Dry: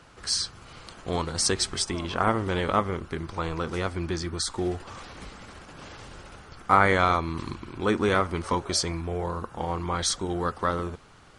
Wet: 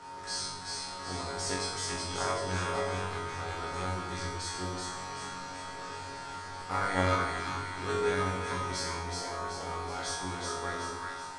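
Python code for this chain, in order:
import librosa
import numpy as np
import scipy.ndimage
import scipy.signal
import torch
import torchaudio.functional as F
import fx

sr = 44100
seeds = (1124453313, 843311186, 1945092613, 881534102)

y = fx.bin_compress(x, sr, power=0.6)
y = fx.doubler(y, sr, ms=12.0, db=-10.5)
y = y + 10.0 ** (-33.0 / 20.0) * np.sin(2.0 * np.pi * 920.0 * np.arange(len(y)) / sr)
y = fx.resonator_bank(y, sr, root=42, chord='fifth', decay_s=0.72)
y = fx.echo_split(y, sr, split_hz=910.0, low_ms=95, high_ms=377, feedback_pct=52, wet_db=-3)
y = fx.upward_expand(y, sr, threshold_db=-35.0, expansion=1.5)
y = y * librosa.db_to_amplitude(5.0)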